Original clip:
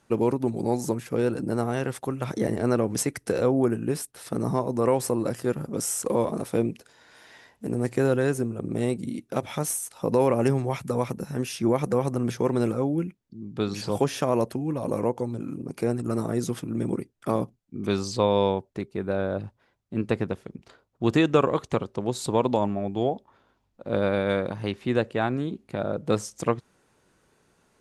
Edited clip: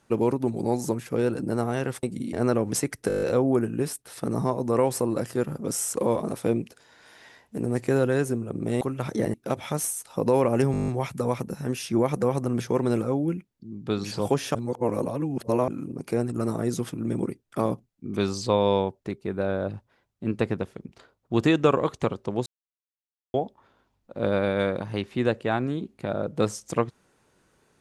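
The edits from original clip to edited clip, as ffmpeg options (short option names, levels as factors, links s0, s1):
-filter_complex "[0:a]asplit=24[s0][s1][s2][s3][s4][s5][s6][s7][s8][s9][s10][s11][s12][s13][s14][s15][s16][s17][s18][s19][s20][s21][s22][s23];[s0]atrim=end=2.032[s24];[s1]atrim=start=8.898:end=9.202[s25];[s2]atrim=start=2.558:end=3.332[s26];[s3]atrim=start=3.308:end=3.332[s27];[s4]atrim=start=3.308:end=3.332[s28];[s5]atrim=start=3.308:end=3.332[s29];[s6]atrim=start=3.308:end=3.332[s30];[s7]atrim=start=3.308:end=3.332[s31];[s8]atrim=start=3.308:end=3.332[s32];[s9]atrim=start=3.308:end=8.902[s33];[s10]atrim=start=2.028:end=2.562[s34];[s11]atrim=start=9.198:end=10.602[s35];[s12]atrim=start=10.578:end=10.602[s36];[s13]atrim=start=10.578:end=10.602[s37];[s14]atrim=start=10.578:end=10.602[s38];[s15]atrim=start=10.578:end=10.602[s39];[s16]atrim=start=10.578:end=10.602[s40];[s17]atrim=start=10.578:end=10.602[s41];[s18]atrim=start=10.578:end=10.602[s42];[s19]atrim=start=10.578:end=14.252[s43];[s20]atrim=start=14.248:end=15.382,asetpts=PTS-STARTPTS,areverse[s44];[s21]atrim=start=15.378:end=22.16,asetpts=PTS-STARTPTS,afade=t=out:st=6.778:d=0.004:c=hsin[s45];[s22]atrim=start=22.16:end=23.04,asetpts=PTS-STARTPTS,volume=0[s46];[s23]atrim=start=23.04,asetpts=PTS-STARTPTS,afade=t=in:d=0.004:c=hsin[s47];[s24][s25]acrossfade=d=0.004:c1=hsin:c2=hsin[s48];[s48][s26]acrossfade=d=0.004:c1=hsin:c2=hsin[s49];[s49][s27]acrossfade=d=0.004:c1=hsin:c2=hsin[s50];[s50][s28]acrossfade=d=0.004:c1=hsin:c2=hsin[s51];[s51][s29]acrossfade=d=0.004:c1=hsin:c2=hsin[s52];[s52][s30]acrossfade=d=0.004:c1=hsin:c2=hsin[s53];[s53][s31]acrossfade=d=0.004:c1=hsin:c2=hsin[s54];[s54][s32]acrossfade=d=0.004:c1=hsin:c2=hsin[s55];[s55][s33]acrossfade=d=0.004:c1=hsin:c2=hsin[s56];[s56][s34]acrossfade=d=0.004:c1=hsin:c2=hsin[s57];[s57][s35]acrossfade=d=0.004:c1=hsin:c2=hsin[s58];[s58][s36]acrossfade=d=0.004:c1=hsin:c2=hsin[s59];[s59][s37]acrossfade=d=0.004:c1=hsin:c2=hsin[s60];[s60][s38]acrossfade=d=0.004:c1=hsin:c2=hsin[s61];[s61][s39]acrossfade=d=0.004:c1=hsin:c2=hsin[s62];[s62][s40]acrossfade=d=0.004:c1=hsin:c2=hsin[s63];[s63][s41]acrossfade=d=0.004:c1=hsin:c2=hsin[s64];[s64][s42]acrossfade=d=0.004:c1=hsin:c2=hsin[s65];[s65][s43]acrossfade=d=0.004:c1=hsin:c2=hsin[s66];[s66][s44]acrossfade=d=0.004:c1=hsin:c2=hsin[s67];[s45][s46][s47]concat=n=3:v=0:a=1[s68];[s67][s68]acrossfade=d=0.004:c1=hsin:c2=hsin"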